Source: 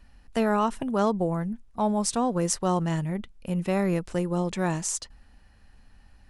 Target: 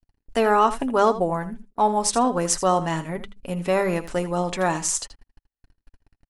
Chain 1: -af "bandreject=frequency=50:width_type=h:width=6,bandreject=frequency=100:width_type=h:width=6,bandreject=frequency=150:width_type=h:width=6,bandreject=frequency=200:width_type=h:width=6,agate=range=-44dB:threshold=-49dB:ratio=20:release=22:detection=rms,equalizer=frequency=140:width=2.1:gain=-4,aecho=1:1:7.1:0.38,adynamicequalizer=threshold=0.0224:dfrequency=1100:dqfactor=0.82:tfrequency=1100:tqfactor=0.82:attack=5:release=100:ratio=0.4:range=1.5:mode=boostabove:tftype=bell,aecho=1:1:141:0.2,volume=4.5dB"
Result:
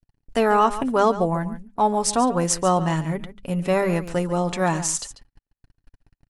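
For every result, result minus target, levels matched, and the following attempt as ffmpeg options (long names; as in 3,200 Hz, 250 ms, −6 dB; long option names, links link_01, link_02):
echo 61 ms late; 125 Hz band +4.0 dB
-af "bandreject=frequency=50:width_type=h:width=6,bandreject=frequency=100:width_type=h:width=6,bandreject=frequency=150:width_type=h:width=6,bandreject=frequency=200:width_type=h:width=6,agate=range=-44dB:threshold=-49dB:ratio=20:release=22:detection=rms,equalizer=frequency=140:width=2.1:gain=-4,aecho=1:1:7.1:0.38,adynamicequalizer=threshold=0.0224:dfrequency=1100:dqfactor=0.82:tfrequency=1100:tqfactor=0.82:attack=5:release=100:ratio=0.4:range=1.5:mode=boostabove:tftype=bell,aecho=1:1:80:0.2,volume=4.5dB"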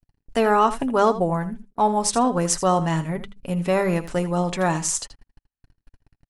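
125 Hz band +4.0 dB
-af "bandreject=frequency=50:width_type=h:width=6,bandreject=frequency=100:width_type=h:width=6,bandreject=frequency=150:width_type=h:width=6,bandreject=frequency=200:width_type=h:width=6,agate=range=-44dB:threshold=-49dB:ratio=20:release=22:detection=rms,equalizer=frequency=140:width=2.1:gain=-12.5,aecho=1:1:7.1:0.38,adynamicequalizer=threshold=0.0224:dfrequency=1100:dqfactor=0.82:tfrequency=1100:tqfactor=0.82:attack=5:release=100:ratio=0.4:range=1.5:mode=boostabove:tftype=bell,aecho=1:1:80:0.2,volume=4.5dB"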